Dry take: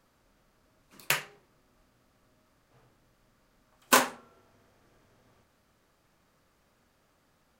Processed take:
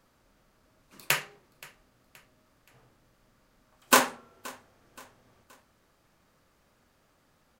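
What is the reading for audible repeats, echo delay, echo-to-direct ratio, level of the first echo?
2, 0.524 s, -21.0 dB, -22.0 dB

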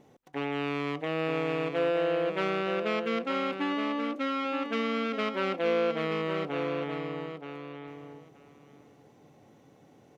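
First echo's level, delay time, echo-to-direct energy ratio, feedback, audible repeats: -7.5 dB, 0.925 s, -7.5 dB, 15%, 2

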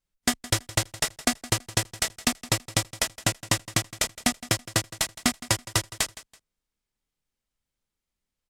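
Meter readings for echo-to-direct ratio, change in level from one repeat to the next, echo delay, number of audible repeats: -17.0 dB, -11.5 dB, 0.165 s, 2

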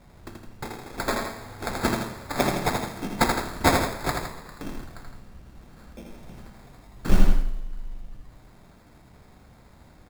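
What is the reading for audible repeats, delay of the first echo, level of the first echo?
2, 81 ms, -4.5 dB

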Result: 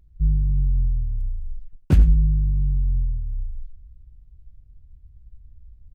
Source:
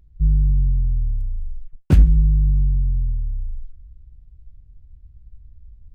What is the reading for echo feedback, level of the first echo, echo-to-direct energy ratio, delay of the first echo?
no steady repeat, -15.0 dB, -15.0 dB, 91 ms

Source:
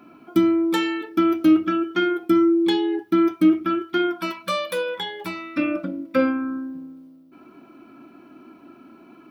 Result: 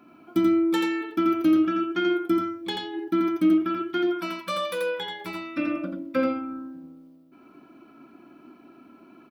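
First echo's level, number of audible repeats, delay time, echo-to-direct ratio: -3.5 dB, 1, 85 ms, -3.5 dB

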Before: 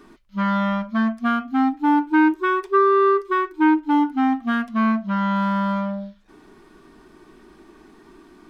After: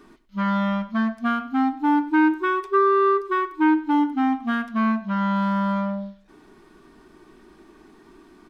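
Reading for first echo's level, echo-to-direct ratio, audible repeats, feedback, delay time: -17.0 dB, -16.5 dB, 2, 28%, 96 ms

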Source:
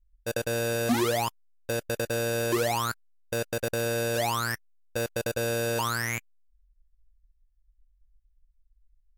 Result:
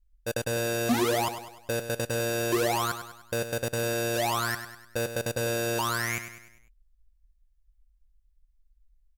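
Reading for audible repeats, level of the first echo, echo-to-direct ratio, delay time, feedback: 4, -10.0 dB, -9.0 dB, 0.1 s, 48%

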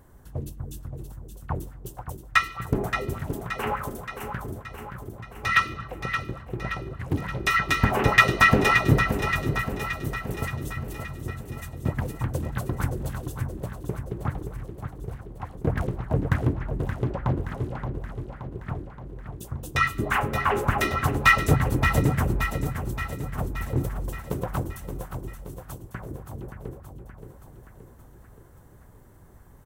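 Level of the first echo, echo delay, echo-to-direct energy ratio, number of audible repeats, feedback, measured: -8.0 dB, 0.574 s, -6.0 dB, 6, 59%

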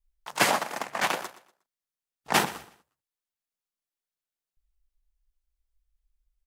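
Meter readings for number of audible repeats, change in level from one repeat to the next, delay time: 2, -11.0 dB, 0.12 s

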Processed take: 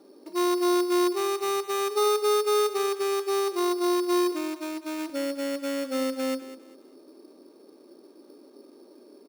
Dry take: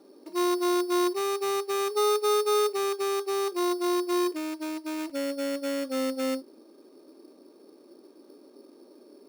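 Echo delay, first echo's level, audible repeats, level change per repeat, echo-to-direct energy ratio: 0.2 s, -14.0 dB, 2, -11.0 dB, -13.5 dB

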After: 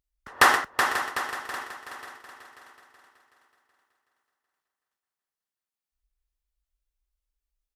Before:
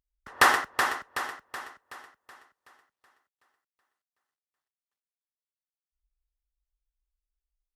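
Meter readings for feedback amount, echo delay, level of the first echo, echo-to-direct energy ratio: 40%, 0.538 s, -12.0 dB, -11.5 dB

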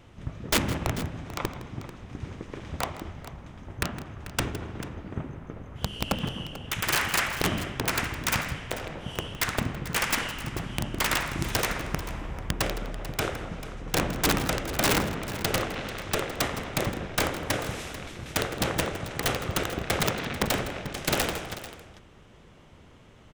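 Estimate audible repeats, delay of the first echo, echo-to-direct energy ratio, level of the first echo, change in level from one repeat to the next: 2, 0.162 s, -12.0 dB, -15.5 dB, no steady repeat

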